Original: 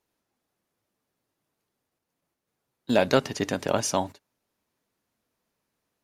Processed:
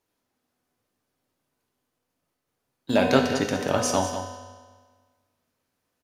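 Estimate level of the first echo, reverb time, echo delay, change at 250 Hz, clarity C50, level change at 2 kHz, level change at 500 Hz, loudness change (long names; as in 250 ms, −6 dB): −10.5 dB, 1.5 s, 192 ms, +3.5 dB, 4.0 dB, +2.5 dB, +1.5 dB, +1.5 dB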